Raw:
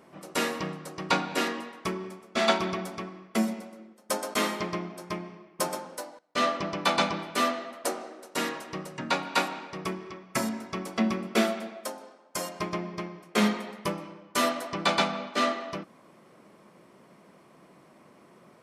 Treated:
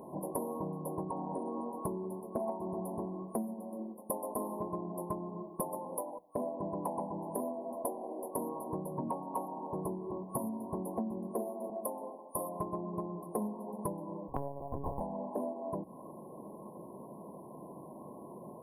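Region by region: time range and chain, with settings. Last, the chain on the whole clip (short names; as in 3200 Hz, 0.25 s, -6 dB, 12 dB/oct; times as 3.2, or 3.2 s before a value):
1.03–1.72 compressor 2.5:1, threshold -37 dBFS + brick-wall FIR low-pass 9900 Hz
11.29–11.7 HPF 220 Hz + doubler 38 ms -4 dB
14.28–15.01 air absorption 420 m + monotone LPC vocoder at 8 kHz 140 Hz + decimation joined by straight lines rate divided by 8×
whole clip: FFT band-reject 1100–9500 Hz; notches 60/120/180 Hz; compressor 10:1, threshold -42 dBFS; gain +8 dB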